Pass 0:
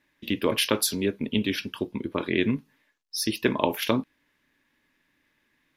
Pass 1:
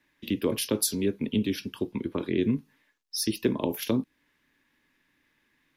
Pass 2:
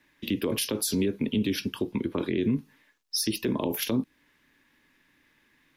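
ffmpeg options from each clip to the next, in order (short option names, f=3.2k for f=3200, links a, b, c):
-filter_complex "[0:a]acrossover=split=230|590|4600[a][b][c][d];[c]acompressor=threshold=-40dB:ratio=6[e];[a][b][e][d]amix=inputs=4:normalize=0,equalizer=f=610:t=o:w=0.33:g=-3.5"
-af "alimiter=limit=-22.5dB:level=0:latency=1:release=53,volume=5dB"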